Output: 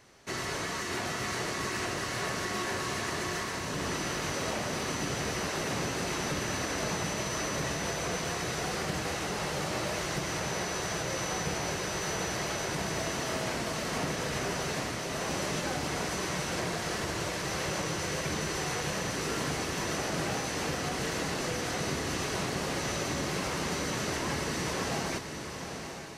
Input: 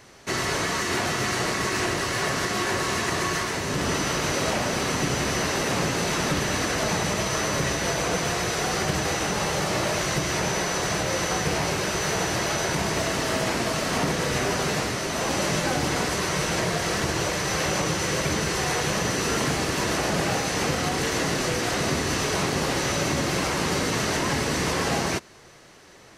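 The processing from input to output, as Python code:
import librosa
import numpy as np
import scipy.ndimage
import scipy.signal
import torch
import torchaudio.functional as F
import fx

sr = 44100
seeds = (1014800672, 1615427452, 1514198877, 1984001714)

y = fx.echo_diffused(x, sr, ms=843, feedback_pct=42, wet_db=-7.0)
y = y * 10.0 ** (-8.5 / 20.0)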